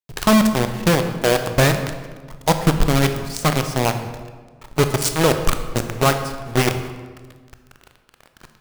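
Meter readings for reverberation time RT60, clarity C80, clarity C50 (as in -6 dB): 1.5 s, 10.0 dB, 8.5 dB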